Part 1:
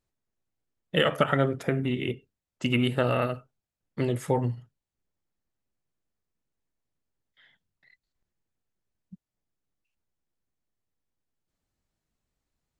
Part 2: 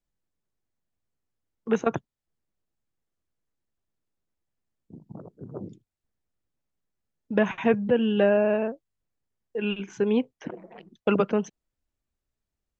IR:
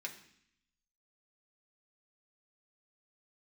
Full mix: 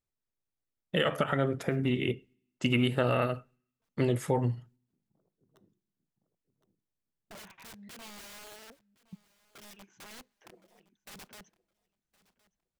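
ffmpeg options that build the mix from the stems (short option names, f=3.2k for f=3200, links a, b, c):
-filter_complex "[0:a]agate=range=-8dB:threshold=-56dB:ratio=16:detection=peak,alimiter=limit=-15dB:level=0:latency=1:release=154,volume=-0.5dB,asplit=3[a][b][c];[b]volume=-22dB[d];[1:a]acompressor=threshold=-27dB:ratio=2,aeval=exprs='0.133*(cos(1*acos(clip(val(0)/0.133,-1,1)))-cos(1*PI/2))+0.0299*(cos(3*acos(clip(val(0)/0.133,-1,1)))-cos(3*PI/2))':c=same,aeval=exprs='(mod(53.1*val(0)+1,2)-1)/53.1':c=same,volume=-9dB,asplit=3[e][f][g];[f]volume=-20dB[h];[g]volume=-21.5dB[i];[c]apad=whole_len=564441[j];[e][j]sidechaincompress=threshold=-50dB:ratio=6:attack=26:release=1300[k];[2:a]atrim=start_sample=2205[l];[d][h]amix=inputs=2:normalize=0[m];[m][l]afir=irnorm=-1:irlink=0[n];[i]aecho=0:1:1065|2130|3195:1|0.2|0.04[o];[a][k][n][o]amix=inputs=4:normalize=0"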